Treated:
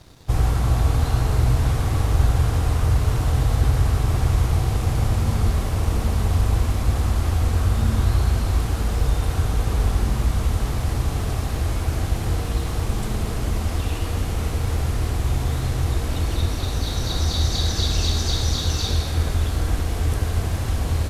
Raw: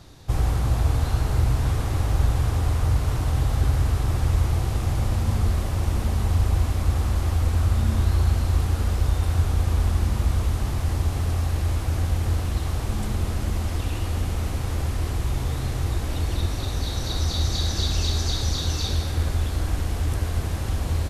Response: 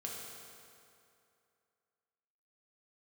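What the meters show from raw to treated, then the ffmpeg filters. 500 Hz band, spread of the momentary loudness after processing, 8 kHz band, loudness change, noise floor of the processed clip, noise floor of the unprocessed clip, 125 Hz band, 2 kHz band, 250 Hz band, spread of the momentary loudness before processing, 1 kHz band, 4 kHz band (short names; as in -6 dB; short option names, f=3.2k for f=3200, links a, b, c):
+3.5 dB, 5 LU, +3.0 dB, +2.0 dB, -27 dBFS, -28 dBFS, +1.5 dB, +3.0 dB, +3.0 dB, 5 LU, +3.0 dB, +3.0 dB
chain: -filter_complex "[0:a]aeval=exprs='sgn(val(0))*max(abs(val(0))-0.00224,0)':c=same,asplit=2[a][b];[1:a]atrim=start_sample=2205[c];[b][c]afir=irnorm=-1:irlink=0,volume=-4dB[d];[a][d]amix=inputs=2:normalize=0"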